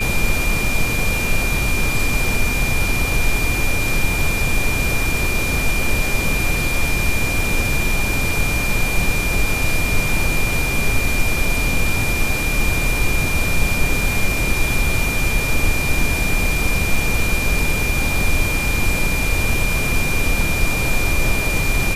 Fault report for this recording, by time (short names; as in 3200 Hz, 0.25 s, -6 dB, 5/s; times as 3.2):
tone 2400 Hz -22 dBFS
16.96 gap 2.5 ms